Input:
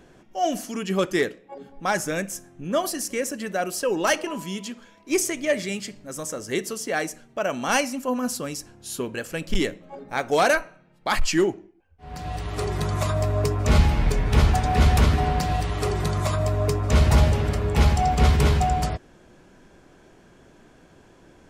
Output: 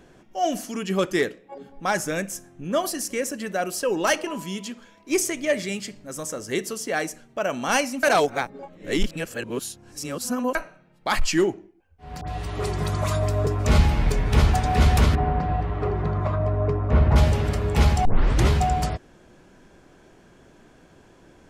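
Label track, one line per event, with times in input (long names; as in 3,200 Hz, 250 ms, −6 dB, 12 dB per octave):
8.030000	10.550000	reverse
12.210000	13.470000	all-pass dispersion highs, late by 66 ms, half as late at 1,700 Hz
15.150000	17.160000	low-pass filter 1,500 Hz
18.050000	18.050000	tape start 0.44 s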